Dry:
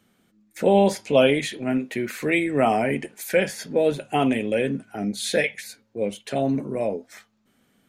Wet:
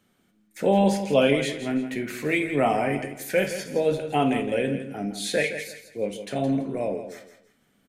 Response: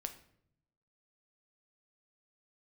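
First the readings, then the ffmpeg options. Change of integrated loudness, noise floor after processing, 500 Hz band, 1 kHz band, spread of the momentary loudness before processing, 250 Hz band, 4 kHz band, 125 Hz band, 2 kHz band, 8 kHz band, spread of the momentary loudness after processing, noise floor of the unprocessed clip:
−2.0 dB, −67 dBFS, −2.0 dB, −1.5 dB, 11 LU, −1.5 dB, −2.0 dB, −0.5 dB, −2.0 dB, −2.0 dB, 10 LU, −66 dBFS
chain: -filter_complex "[0:a]aecho=1:1:166|332|498:0.299|0.0866|0.0251[link_01];[1:a]atrim=start_sample=2205,atrim=end_sample=3969[link_02];[link_01][link_02]afir=irnorm=-1:irlink=0"

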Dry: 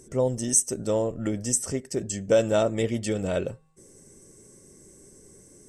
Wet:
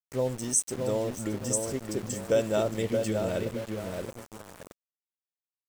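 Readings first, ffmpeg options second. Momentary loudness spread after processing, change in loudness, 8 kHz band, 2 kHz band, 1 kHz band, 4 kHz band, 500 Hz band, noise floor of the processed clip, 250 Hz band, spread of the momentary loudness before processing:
14 LU, −4.0 dB, −4.5 dB, −2.5 dB, −2.5 dB, −3.0 dB, −3.0 dB, below −85 dBFS, −3.0 dB, 9 LU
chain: -filter_complex "[0:a]asplit=2[link_01][link_02];[link_02]adelay=622,lowpass=frequency=1600:poles=1,volume=-4dB,asplit=2[link_03][link_04];[link_04]adelay=622,lowpass=frequency=1600:poles=1,volume=0.39,asplit=2[link_05][link_06];[link_06]adelay=622,lowpass=frequency=1600:poles=1,volume=0.39,asplit=2[link_07][link_08];[link_08]adelay=622,lowpass=frequency=1600:poles=1,volume=0.39,asplit=2[link_09][link_10];[link_10]adelay=622,lowpass=frequency=1600:poles=1,volume=0.39[link_11];[link_01][link_03][link_05][link_07][link_09][link_11]amix=inputs=6:normalize=0,aeval=exprs='val(0)*gte(abs(val(0)),0.0211)':channel_layout=same,volume=-4.5dB"

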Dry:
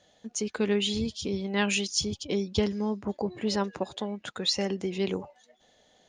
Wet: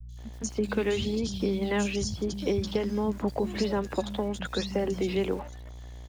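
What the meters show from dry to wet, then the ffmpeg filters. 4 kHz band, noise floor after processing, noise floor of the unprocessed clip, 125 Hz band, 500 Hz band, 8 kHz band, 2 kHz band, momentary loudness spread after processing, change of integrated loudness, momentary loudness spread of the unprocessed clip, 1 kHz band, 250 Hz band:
−6.5 dB, −43 dBFS, −65 dBFS, +2.0 dB, +2.0 dB, −5.0 dB, −2.0 dB, 7 LU, 0.0 dB, 8 LU, +1.0 dB, +0.5 dB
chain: -filter_complex "[0:a]acrossover=split=630|1400[link_01][link_02][link_03];[link_01]acompressor=threshold=-31dB:ratio=4[link_04];[link_02]acompressor=threshold=-45dB:ratio=4[link_05];[link_03]acompressor=threshold=-43dB:ratio=4[link_06];[link_04][link_05][link_06]amix=inputs=3:normalize=0,aeval=exprs='val(0)+0.00447*(sin(2*PI*60*n/s)+sin(2*PI*2*60*n/s)/2+sin(2*PI*3*60*n/s)/3+sin(2*PI*4*60*n/s)/4+sin(2*PI*5*60*n/s)/5)':channel_layout=same,acrossover=split=150|830|3800[link_07][link_08][link_09][link_10];[link_08]aeval=exprs='val(0)*gte(abs(val(0)),0.00299)':channel_layout=same[link_11];[link_07][link_11][link_09][link_10]amix=inputs=4:normalize=0,acrossover=split=180|3600[link_12][link_13][link_14];[link_14]adelay=90[link_15];[link_13]adelay=170[link_16];[link_12][link_16][link_15]amix=inputs=3:normalize=0,volume=7dB"

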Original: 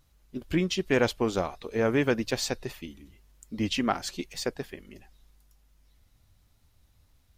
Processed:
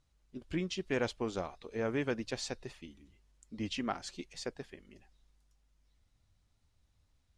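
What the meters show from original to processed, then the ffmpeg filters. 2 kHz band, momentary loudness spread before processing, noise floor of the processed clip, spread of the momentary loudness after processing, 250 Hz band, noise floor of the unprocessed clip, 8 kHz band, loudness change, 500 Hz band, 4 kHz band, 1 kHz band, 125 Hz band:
−9.0 dB, 17 LU, −74 dBFS, 17 LU, −9.0 dB, −65 dBFS, −9.5 dB, −9.0 dB, −9.0 dB, −9.0 dB, −9.0 dB, −9.0 dB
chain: -af "lowpass=frequency=9300:width=0.5412,lowpass=frequency=9300:width=1.3066,volume=-9dB"

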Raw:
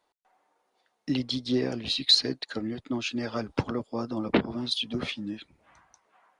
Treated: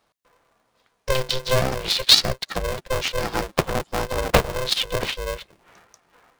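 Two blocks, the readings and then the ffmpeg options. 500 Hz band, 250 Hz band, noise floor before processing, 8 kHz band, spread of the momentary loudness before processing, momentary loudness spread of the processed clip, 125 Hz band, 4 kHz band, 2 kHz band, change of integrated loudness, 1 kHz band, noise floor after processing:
+9.0 dB, −4.5 dB, −76 dBFS, +13.0 dB, 13 LU, 13 LU, +8.0 dB, +6.5 dB, +10.0 dB, +6.5 dB, +12.0 dB, −69 dBFS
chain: -af "aeval=exprs='val(0)*sgn(sin(2*PI*260*n/s))':channel_layout=same,volume=6.5dB"

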